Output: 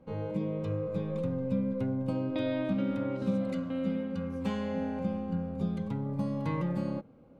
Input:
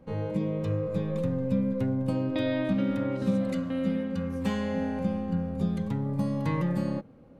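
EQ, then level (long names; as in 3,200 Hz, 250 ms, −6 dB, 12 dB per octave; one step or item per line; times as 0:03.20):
low-pass filter 4,000 Hz 6 dB per octave
low-shelf EQ 130 Hz −4 dB
notch filter 1,800 Hz, Q 7.6
−2.5 dB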